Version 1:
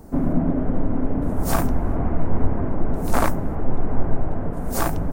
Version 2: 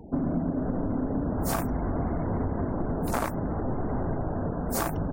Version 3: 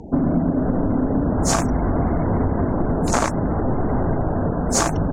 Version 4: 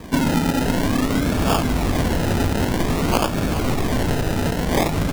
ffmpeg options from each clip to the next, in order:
ffmpeg -i in.wav -af "highpass=frequency=67:poles=1,afftfilt=real='re*gte(hypot(re,im),0.00794)':imag='im*gte(hypot(re,im),0.00794)':win_size=1024:overlap=0.75,acompressor=threshold=-24dB:ratio=6" out.wav
ffmpeg -i in.wav -af "lowpass=frequency=6700:width_type=q:width=3.4,volume=8.5dB" out.wav
ffmpeg -i in.wav -af "acrusher=samples=31:mix=1:aa=0.000001:lfo=1:lforange=18.6:lforate=0.52" out.wav

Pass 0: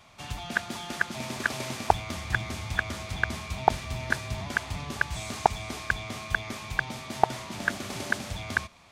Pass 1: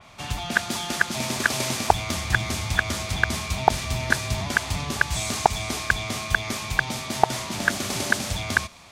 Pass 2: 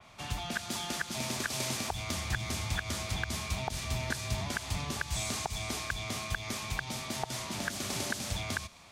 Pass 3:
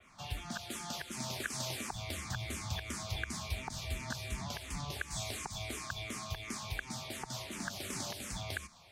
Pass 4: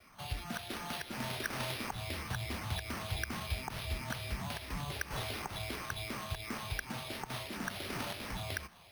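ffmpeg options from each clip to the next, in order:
ffmpeg -i in.wav -filter_complex "[0:a]asplit=2[link_01][link_02];[link_02]alimiter=limit=-13.5dB:level=0:latency=1:release=115,volume=1dB[link_03];[link_01][link_03]amix=inputs=2:normalize=0,adynamicequalizer=threshold=0.0158:dfrequency=3700:dqfactor=0.7:tfrequency=3700:tqfactor=0.7:attack=5:release=100:ratio=0.375:range=3:mode=boostabove:tftype=highshelf" out.wav
ffmpeg -i in.wav -filter_complex "[0:a]alimiter=limit=-9.5dB:level=0:latency=1:release=84,acrossover=split=150|3000[link_01][link_02][link_03];[link_02]acompressor=threshold=-29dB:ratio=2[link_04];[link_01][link_04][link_03]amix=inputs=3:normalize=0,volume=-6.5dB" out.wav
ffmpeg -i in.wav -filter_complex "[0:a]asplit=2[link_01][link_02];[link_02]afreqshift=-2.8[link_03];[link_01][link_03]amix=inputs=2:normalize=1,volume=-2dB" out.wav
ffmpeg -i in.wav -af "acrusher=samples=6:mix=1:aa=0.000001,volume=1dB" out.wav

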